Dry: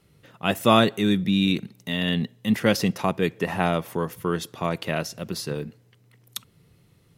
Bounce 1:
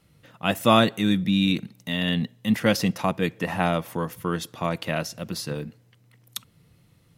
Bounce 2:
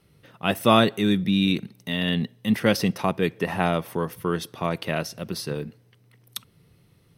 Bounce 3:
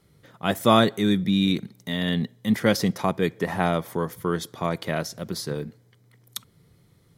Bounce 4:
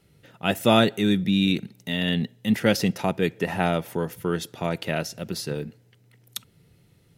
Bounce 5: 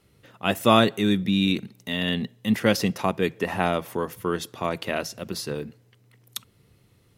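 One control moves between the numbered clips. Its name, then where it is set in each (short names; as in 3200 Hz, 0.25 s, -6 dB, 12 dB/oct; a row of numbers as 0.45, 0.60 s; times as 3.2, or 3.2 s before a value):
notch, frequency: 400, 7100, 2700, 1100, 160 Hz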